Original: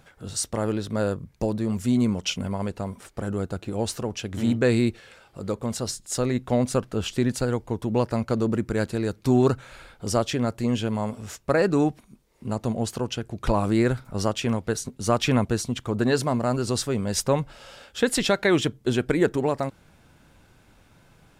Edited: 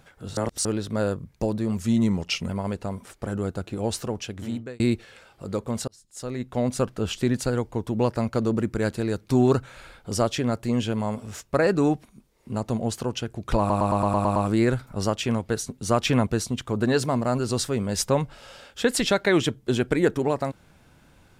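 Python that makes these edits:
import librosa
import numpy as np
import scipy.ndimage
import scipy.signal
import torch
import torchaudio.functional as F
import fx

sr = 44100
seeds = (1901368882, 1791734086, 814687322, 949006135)

y = fx.edit(x, sr, fx.reverse_span(start_s=0.37, length_s=0.28),
    fx.speed_span(start_s=1.8, length_s=0.64, speed=0.93),
    fx.fade_out_span(start_s=4.09, length_s=0.66),
    fx.fade_in_span(start_s=5.83, length_s=0.99),
    fx.stutter(start_s=13.54, slice_s=0.11, count=8), tone=tone)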